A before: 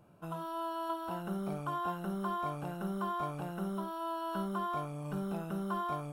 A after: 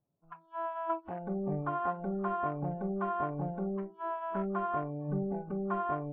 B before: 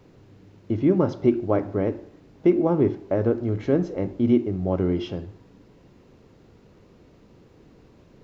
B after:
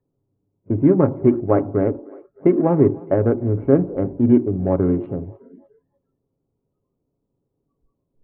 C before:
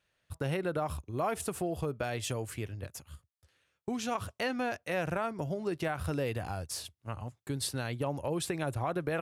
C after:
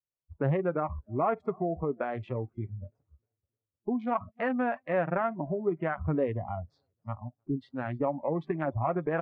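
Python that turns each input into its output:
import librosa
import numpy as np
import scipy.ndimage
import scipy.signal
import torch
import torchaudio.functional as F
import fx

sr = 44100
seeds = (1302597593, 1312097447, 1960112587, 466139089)

p1 = fx.wiener(x, sr, points=25)
p2 = scipy.signal.sosfilt(scipy.signal.butter(4, 1900.0, 'lowpass', fs=sr, output='sos'), p1)
p3 = p2 + fx.echo_feedback(p2, sr, ms=305, feedback_pct=55, wet_db=-23.5, dry=0)
p4 = fx.noise_reduce_blind(p3, sr, reduce_db=27)
p5 = p4 + 0.32 * np.pad(p4, (int(7.3 * sr / 1000.0), 0))[:len(p4)]
y = F.gain(torch.from_numpy(p5), 5.0).numpy()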